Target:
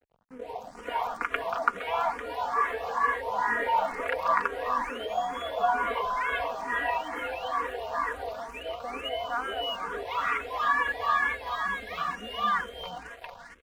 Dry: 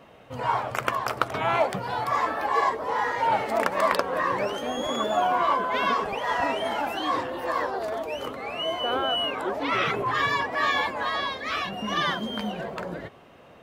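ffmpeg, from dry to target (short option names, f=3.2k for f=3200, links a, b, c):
-filter_complex "[0:a]asubboost=boost=10.5:cutoff=60,acrossover=split=370|1200[a][b][c];[a]acompressor=threshold=-46dB:ratio=6[d];[d][b][c]amix=inputs=3:normalize=0,aecho=1:1:4.2:0.88,acrossover=split=650|5200[e][f][g];[g]adelay=280[h];[f]adelay=460[i];[e][i][h]amix=inputs=3:normalize=0,acrossover=split=3000[j][k];[k]acompressor=threshold=-51dB:ratio=4:attack=1:release=60[l];[j][l]amix=inputs=2:normalize=0,aeval=exprs='sgn(val(0))*max(abs(val(0))-0.00447,0)':c=same,asplit=2[m][n];[n]afreqshift=2.2[o];[m][o]amix=inputs=2:normalize=1"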